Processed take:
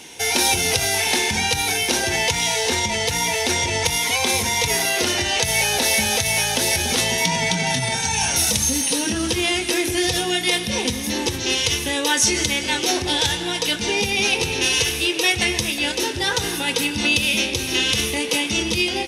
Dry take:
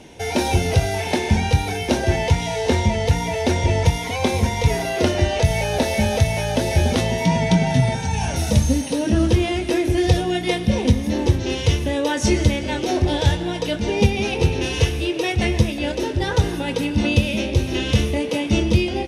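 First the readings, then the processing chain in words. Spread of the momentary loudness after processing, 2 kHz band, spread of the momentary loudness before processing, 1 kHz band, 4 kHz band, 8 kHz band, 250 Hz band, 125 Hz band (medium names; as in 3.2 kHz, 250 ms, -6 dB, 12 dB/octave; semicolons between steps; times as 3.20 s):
4 LU, +6.0 dB, 4 LU, +0.5 dB, +8.5 dB, +11.5 dB, -5.5 dB, -12.0 dB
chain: peaking EQ 610 Hz -10 dB 0.22 oct; peak limiter -12 dBFS, peak gain reduction 8.5 dB; tilt EQ +3.5 dB/octave; trim +3 dB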